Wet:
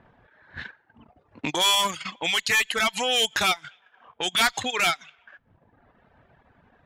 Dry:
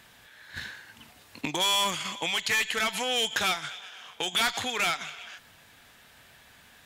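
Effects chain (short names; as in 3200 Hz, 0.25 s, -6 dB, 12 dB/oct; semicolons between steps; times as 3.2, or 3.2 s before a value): low-pass opened by the level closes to 810 Hz, open at -25.5 dBFS; reverb removal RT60 0.98 s; transient shaper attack -5 dB, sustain -9 dB; gain +6.5 dB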